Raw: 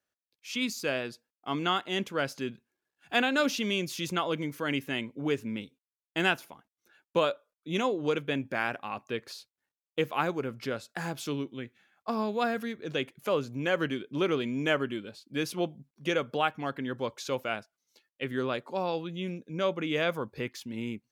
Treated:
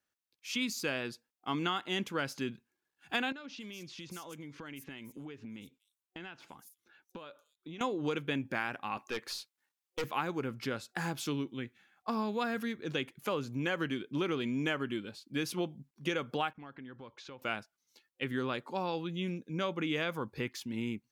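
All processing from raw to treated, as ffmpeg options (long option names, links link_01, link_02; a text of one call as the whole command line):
ffmpeg -i in.wav -filter_complex "[0:a]asettb=1/sr,asplit=3[link_01][link_02][link_03];[link_01]atrim=end=3.324[link_04];[link_02]atrim=start=3.32:end=7.81,asetpts=PTS-STARTPTS,afade=type=in:duration=0.004:curve=qsin,afade=type=out:start_time=4.486:duration=0.004:curve=qsin,acompressor=threshold=-41dB:ratio=12:attack=3.2:release=140:knee=1:detection=peak,acrossover=split=5800[link_05][link_06];[link_06]adelay=240[link_07];[link_05][link_07]amix=inputs=2:normalize=0,atrim=end_sample=198009[link_08];[link_03]atrim=start=7.806[link_09];[link_04][link_08]acrossfade=duration=0.004:curve1=hsin:curve2=qsin[link_10];[link_10][link_09]acrossfade=duration=0.004:curve1=qsin:curve2=hsin,asettb=1/sr,asplit=3[link_11][link_12][link_13];[link_11]atrim=end=8.974[link_14];[link_12]atrim=start=8.97:end=10.04,asetpts=PTS-STARTPTS,afade=type=in:duration=0.004:curve=qsin,afade=type=out:start_time=1.066:duration=0.004:curve=qsin,highpass=frequency=470:poles=1,acontrast=21,aeval=exprs='(tanh(25.1*val(0)+0.25)-tanh(0.25))/25.1':channel_layout=same[link_15];[link_13]atrim=start=10.036[link_16];[link_14][link_15]acrossfade=duration=0.004:curve1=hsin:curve2=qsin[link_17];[link_17][link_16]acrossfade=duration=0.004:curve1=qsin:curve2=hsin,asettb=1/sr,asplit=3[link_18][link_19][link_20];[link_18]atrim=end=16.534[link_21];[link_19]atrim=start=16.53:end=17.42,asetpts=PTS-STARTPTS,afade=type=in:duration=0.004:curve=qsin,afade=type=out:start_time=0.886:duration=0.004:curve=qsin,agate=range=-33dB:threshold=-52dB:ratio=3:release=100:detection=peak,lowpass=3300,acompressor=threshold=-48dB:ratio=3:attack=3.2:release=140:knee=1:detection=peak[link_22];[link_20]atrim=start=17.416[link_23];[link_21][link_22]acrossfade=duration=0.004:curve1=hsin:curve2=qsin[link_24];[link_24][link_23]acrossfade=duration=0.004:curve1=qsin:curve2=hsin,superequalizer=7b=0.708:8b=0.562,acompressor=threshold=-29dB:ratio=6" out.wav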